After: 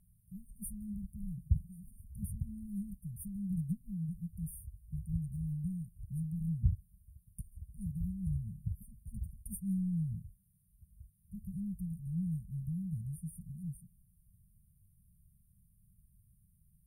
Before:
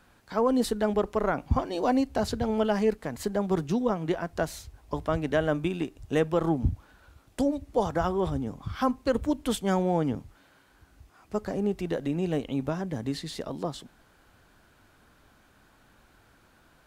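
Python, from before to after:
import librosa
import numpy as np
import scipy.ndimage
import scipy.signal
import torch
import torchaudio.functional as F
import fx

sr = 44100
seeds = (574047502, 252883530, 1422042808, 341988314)

p1 = np.clip(x, -10.0 ** (-28.5 / 20.0), 10.0 ** (-28.5 / 20.0))
p2 = x + F.gain(torch.from_numpy(p1), -8.0).numpy()
p3 = fx.brickwall_bandstop(p2, sr, low_hz=200.0, high_hz=8700.0)
y = F.gain(torch.from_numpy(p3), -4.0).numpy()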